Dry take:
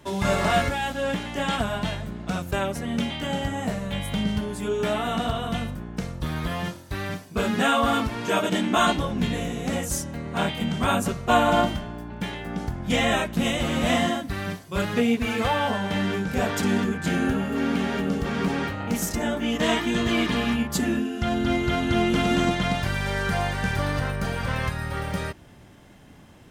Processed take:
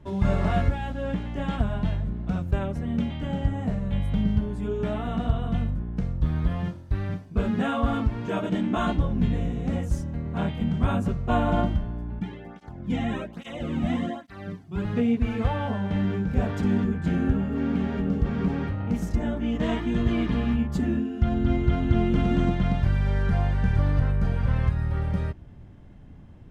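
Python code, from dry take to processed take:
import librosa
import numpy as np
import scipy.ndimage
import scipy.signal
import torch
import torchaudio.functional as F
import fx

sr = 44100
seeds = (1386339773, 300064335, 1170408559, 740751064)

y = fx.flanger_cancel(x, sr, hz=1.2, depth_ms=2.1, at=(12.19, 14.85))
y = fx.riaa(y, sr, side='playback')
y = y * 10.0 ** (-7.5 / 20.0)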